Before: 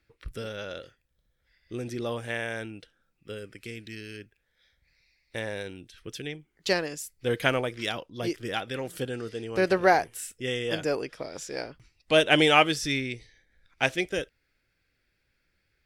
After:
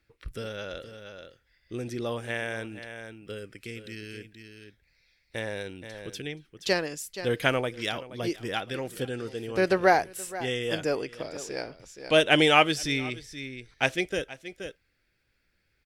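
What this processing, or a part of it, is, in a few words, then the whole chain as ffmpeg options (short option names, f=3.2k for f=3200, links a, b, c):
ducked delay: -filter_complex "[0:a]asplit=3[a][b][c];[b]adelay=475,volume=-7.5dB[d];[c]apad=whole_len=720086[e];[d][e]sidechaincompress=threshold=-40dB:ratio=8:attack=29:release=431[f];[a][f]amix=inputs=2:normalize=0"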